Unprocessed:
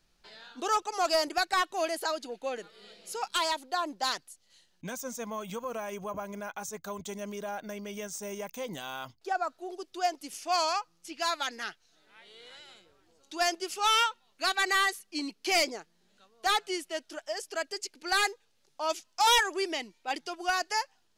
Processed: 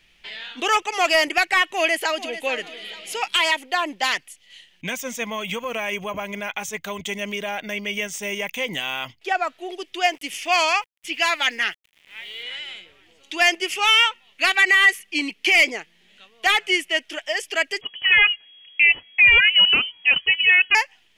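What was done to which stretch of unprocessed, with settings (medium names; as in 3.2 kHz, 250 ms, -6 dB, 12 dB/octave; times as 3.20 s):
1.72–2.35 s: echo throw 440 ms, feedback 35%, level -13.5 dB
10.03–12.43 s: small samples zeroed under -58 dBFS
17.81–20.75 s: frequency inversion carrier 3.3 kHz
whole clip: high-order bell 2.5 kHz +14.5 dB 1.1 oct; peak limiter -13 dBFS; dynamic bell 3.7 kHz, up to -8 dB, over -43 dBFS, Q 3; trim +7 dB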